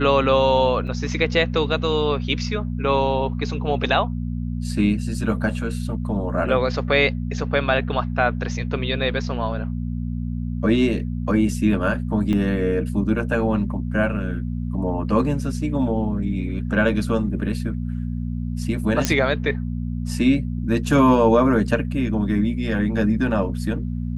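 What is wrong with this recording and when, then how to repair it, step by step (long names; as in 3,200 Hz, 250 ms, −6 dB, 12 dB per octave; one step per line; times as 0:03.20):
mains hum 60 Hz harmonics 4 −26 dBFS
0:00.87–0:00.88: drop-out 6 ms
0:12.33: drop-out 2.4 ms
0:19.05: click −3 dBFS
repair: click removal
hum removal 60 Hz, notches 4
repair the gap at 0:00.87, 6 ms
repair the gap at 0:12.33, 2.4 ms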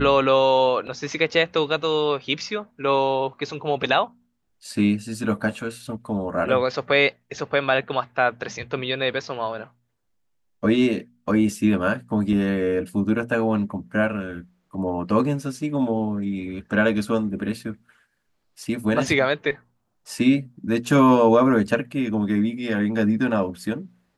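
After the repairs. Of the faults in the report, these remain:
none of them is left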